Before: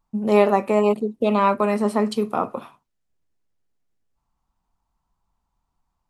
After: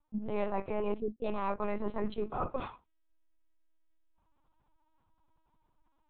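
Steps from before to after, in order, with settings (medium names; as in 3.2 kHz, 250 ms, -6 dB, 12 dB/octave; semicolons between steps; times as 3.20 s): reverse; compression 4:1, threshold -35 dBFS, peak gain reduction 20 dB; reverse; LPC vocoder at 8 kHz pitch kept; trim +2 dB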